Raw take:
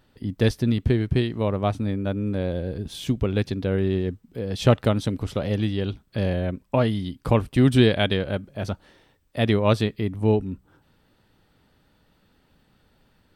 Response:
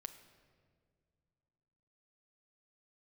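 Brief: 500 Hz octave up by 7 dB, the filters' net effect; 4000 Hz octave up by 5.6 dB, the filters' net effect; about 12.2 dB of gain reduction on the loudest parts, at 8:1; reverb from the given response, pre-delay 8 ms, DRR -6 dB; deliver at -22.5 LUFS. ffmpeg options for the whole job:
-filter_complex "[0:a]equalizer=f=500:t=o:g=8.5,equalizer=f=4k:t=o:g=7,acompressor=threshold=-21dB:ratio=8,asplit=2[a][b];[1:a]atrim=start_sample=2205,adelay=8[c];[b][c]afir=irnorm=-1:irlink=0,volume=10.5dB[d];[a][d]amix=inputs=2:normalize=0,volume=-2.5dB"

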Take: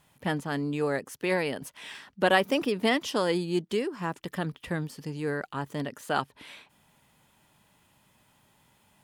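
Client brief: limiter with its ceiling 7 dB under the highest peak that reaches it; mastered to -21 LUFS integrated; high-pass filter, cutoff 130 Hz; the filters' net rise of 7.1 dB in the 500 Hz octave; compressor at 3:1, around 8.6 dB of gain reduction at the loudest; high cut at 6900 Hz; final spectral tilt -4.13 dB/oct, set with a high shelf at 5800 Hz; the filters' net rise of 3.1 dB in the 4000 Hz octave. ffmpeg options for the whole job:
-af "highpass=130,lowpass=6.9k,equalizer=f=500:t=o:g=8.5,equalizer=f=4k:t=o:g=7,highshelf=f=5.8k:g=-7,acompressor=threshold=-24dB:ratio=3,volume=10.5dB,alimiter=limit=-9dB:level=0:latency=1"

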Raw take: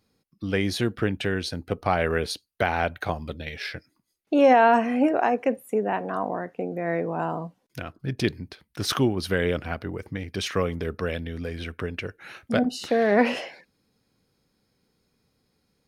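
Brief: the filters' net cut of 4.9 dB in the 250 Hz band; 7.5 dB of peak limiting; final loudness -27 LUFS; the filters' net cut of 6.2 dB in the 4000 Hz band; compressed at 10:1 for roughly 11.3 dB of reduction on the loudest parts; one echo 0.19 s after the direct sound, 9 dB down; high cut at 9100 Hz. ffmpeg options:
-af "lowpass=9.1k,equalizer=f=250:t=o:g=-6,equalizer=f=4k:t=o:g=-8,acompressor=threshold=-25dB:ratio=10,alimiter=limit=-21.5dB:level=0:latency=1,aecho=1:1:190:0.355,volume=6.5dB"

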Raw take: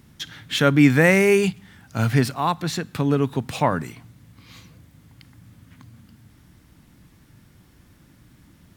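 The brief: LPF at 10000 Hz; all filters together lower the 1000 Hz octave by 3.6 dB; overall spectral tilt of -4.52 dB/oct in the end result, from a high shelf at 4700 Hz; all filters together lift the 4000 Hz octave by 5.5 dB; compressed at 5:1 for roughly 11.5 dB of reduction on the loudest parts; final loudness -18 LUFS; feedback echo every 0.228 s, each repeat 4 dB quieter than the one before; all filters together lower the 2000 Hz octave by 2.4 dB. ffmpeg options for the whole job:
-af "lowpass=10k,equalizer=f=1k:t=o:g=-4,equalizer=f=2k:t=o:g=-4.5,equalizer=f=4k:t=o:g=5.5,highshelf=f=4.7k:g=7,acompressor=threshold=-23dB:ratio=5,aecho=1:1:228|456|684|912|1140|1368|1596|1824|2052:0.631|0.398|0.25|0.158|0.0994|0.0626|0.0394|0.0249|0.0157,volume=8.5dB"

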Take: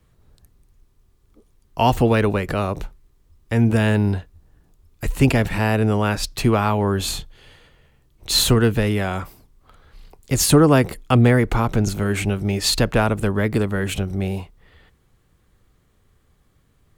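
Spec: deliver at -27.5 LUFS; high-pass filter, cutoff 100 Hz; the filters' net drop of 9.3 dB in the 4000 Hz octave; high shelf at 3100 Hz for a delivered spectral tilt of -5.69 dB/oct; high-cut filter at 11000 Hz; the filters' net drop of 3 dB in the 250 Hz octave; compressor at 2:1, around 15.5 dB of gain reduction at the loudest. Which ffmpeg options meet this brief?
-af "highpass=100,lowpass=11k,equalizer=f=250:t=o:g=-3.5,highshelf=f=3.1k:g=-8,equalizer=f=4k:t=o:g=-5,acompressor=threshold=-41dB:ratio=2,volume=8dB"

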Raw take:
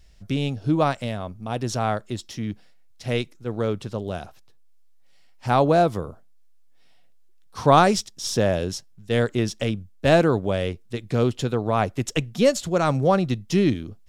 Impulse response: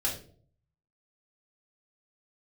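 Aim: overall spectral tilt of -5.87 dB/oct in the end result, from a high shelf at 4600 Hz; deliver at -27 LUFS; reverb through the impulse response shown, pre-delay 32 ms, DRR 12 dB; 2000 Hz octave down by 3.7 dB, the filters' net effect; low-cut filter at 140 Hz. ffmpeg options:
-filter_complex "[0:a]highpass=140,equalizer=f=2k:t=o:g=-3.5,highshelf=f=4.6k:g=-8.5,asplit=2[a][b];[1:a]atrim=start_sample=2205,adelay=32[c];[b][c]afir=irnorm=-1:irlink=0,volume=-18dB[d];[a][d]amix=inputs=2:normalize=0,volume=-3dB"

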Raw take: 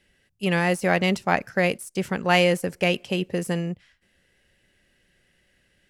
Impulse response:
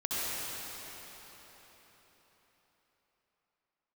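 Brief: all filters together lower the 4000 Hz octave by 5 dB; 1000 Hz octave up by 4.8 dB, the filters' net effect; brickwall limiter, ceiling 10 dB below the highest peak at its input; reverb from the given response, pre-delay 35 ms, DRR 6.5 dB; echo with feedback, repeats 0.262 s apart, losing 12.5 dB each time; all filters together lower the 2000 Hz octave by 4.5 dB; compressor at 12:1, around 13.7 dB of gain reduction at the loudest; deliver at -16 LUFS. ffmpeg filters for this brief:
-filter_complex "[0:a]equalizer=f=1k:t=o:g=8.5,equalizer=f=2k:t=o:g=-7,equalizer=f=4k:t=o:g=-4.5,acompressor=threshold=-26dB:ratio=12,alimiter=level_in=2dB:limit=-24dB:level=0:latency=1,volume=-2dB,aecho=1:1:262|524|786:0.237|0.0569|0.0137,asplit=2[a][b];[1:a]atrim=start_sample=2205,adelay=35[c];[b][c]afir=irnorm=-1:irlink=0,volume=-15dB[d];[a][d]amix=inputs=2:normalize=0,volume=20dB"

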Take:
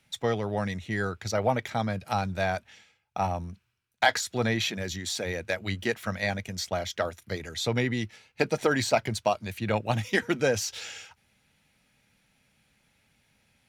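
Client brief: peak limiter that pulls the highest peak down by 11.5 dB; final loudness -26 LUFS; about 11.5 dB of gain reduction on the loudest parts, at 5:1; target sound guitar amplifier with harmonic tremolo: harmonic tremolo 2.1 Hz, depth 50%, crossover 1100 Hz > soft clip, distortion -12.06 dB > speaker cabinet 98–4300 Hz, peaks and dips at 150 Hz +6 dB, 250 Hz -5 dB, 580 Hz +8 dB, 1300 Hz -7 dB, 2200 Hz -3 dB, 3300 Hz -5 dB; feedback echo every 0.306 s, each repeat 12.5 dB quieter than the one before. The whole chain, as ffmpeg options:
-filter_complex "[0:a]acompressor=threshold=-31dB:ratio=5,alimiter=level_in=1dB:limit=-24dB:level=0:latency=1,volume=-1dB,aecho=1:1:306|612|918:0.237|0.0569|0.0137,acrossover=split=1100[a][b];[a]aeval=exprs='val(0)*(1-0.5/2+0.5/2*cos(2*PI*2.1*n/s))':c=same[c];[b]aeval=exprs='val(0)*(1-0.5/2-0.5/2*cos(2*PI*2.1*n/s))':c=same[d];[c][d]amix=inputs=2:normalize=0,asoftclip=threshold=-35.5dB,highpass=98,equalizer=f=150:t=q:w=4:g=6,equalizer=f=250:t=q:w=4:g=-5,equalizer=f=580:t=q:w=4:g=8,equalizer=f=1.3k:t=q:w=4:g=-7,equalizer=f=2.2k:t=q:w=4:g=-3,equalizer=f=3.3k:t=q:w=4:g=-5,lowpass=f=4.3k:w=0.5412,lowpass=f=4.3k:w=1.3066,volume=16.5dB"

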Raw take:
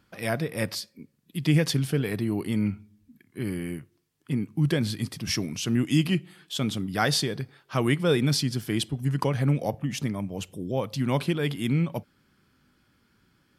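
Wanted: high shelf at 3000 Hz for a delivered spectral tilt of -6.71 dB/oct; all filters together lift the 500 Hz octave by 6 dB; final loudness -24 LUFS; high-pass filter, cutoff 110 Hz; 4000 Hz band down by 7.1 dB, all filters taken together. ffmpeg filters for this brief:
-af "highpass=110,equalizer=f=500:t=o:g=7.5,highshelf=f=3k:g=-3.5,equalizer=f=4k:t=o:g=-6.5,volume=2dB"

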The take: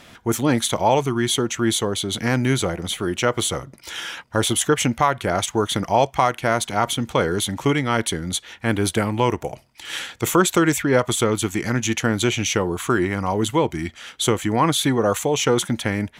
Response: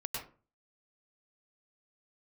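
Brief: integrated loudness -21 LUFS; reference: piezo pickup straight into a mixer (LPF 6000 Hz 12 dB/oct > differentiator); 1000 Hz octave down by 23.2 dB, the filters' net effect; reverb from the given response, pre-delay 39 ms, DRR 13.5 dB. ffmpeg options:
-filter_complex "[0:a]equalizer=f=1k:t=o:g=-8.5,asplit=2[a][b];[1:a]atrim=start_sample=2205,adelay=39[c];[b][c]afir=irnorm=-1:irlink=0,volume=-15.5dB[d];[a][d]amix=inputs=2:normalize=0,lowpass=6k,aderivative,volume=13dB"

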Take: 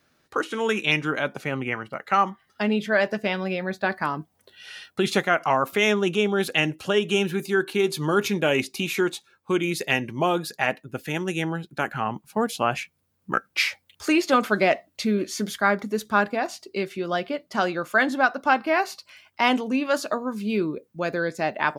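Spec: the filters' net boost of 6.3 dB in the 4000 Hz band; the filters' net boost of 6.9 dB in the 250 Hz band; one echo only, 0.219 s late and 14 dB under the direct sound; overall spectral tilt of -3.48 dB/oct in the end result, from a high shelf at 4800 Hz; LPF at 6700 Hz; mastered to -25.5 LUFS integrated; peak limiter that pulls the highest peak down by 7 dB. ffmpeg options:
-af "lowpass=6.7k,equalizer=f=250:t=o:g=9,equalizer=f=4k:t=o:g=7.5,highshelf=f=4.8k:g=3.5,alimiter=limit=-8.5dB:level=0:latency=1,aecho=1:1:219:0.2,volume=-4dB"

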